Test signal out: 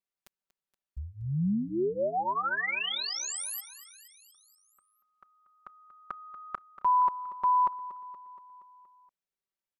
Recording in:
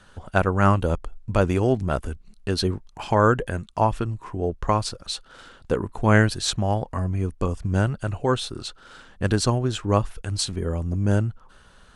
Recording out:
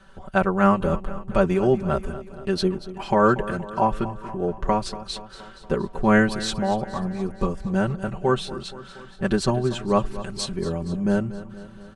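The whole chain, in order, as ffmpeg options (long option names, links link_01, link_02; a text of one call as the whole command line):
ffmpeg -i in.wav -filter_complex "[0:a]highshelf=frequency=3700:gain=-8,aecho=1:1:5.2:0.95,asplit=2[link_01][link_02];[link_02]aecho=0:1:236|472|708|944|1180|1416:0.178|0.107|0.064|0.0384|0.023|0.0138[link_03];[link_01][link_03]amix=inputs=2:normalize=0,volume=-1.5dB" out.wav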